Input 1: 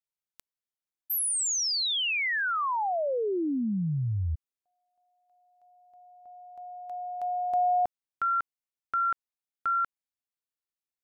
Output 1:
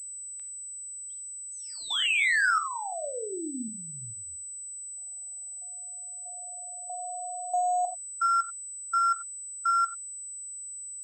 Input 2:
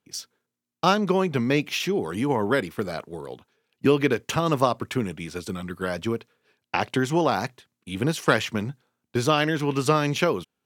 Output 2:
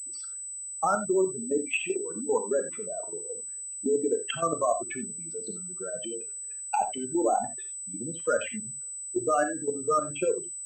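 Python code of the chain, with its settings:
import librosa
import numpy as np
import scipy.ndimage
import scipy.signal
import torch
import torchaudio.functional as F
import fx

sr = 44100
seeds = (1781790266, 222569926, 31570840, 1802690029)

y = fx.spec_expand(x, sr, power=3.9)
y = fx.env_lowpass_down(y, sr, base_hz=1600.0, full_db=-23.0)
y = scipy.signal.sosfilt(scipy.signal.butter(2, 310.0, 'highpass', fs=sr, output='sos'), y)
y = fx.peak_eq(y, sr, hz=2700.0, db=8.5, octaves=2.9)
y = fx.level_steps(y, sr, step_db=12)
y = fx.air_absorb(y, sr, metres=62.0)
y = fx.rev_gated(y, sr, seeds[0], gate_ms=110, shape='flat', drr_db=6.0)
y = fx.pwm(y, sr, carrier_hz=8000.0)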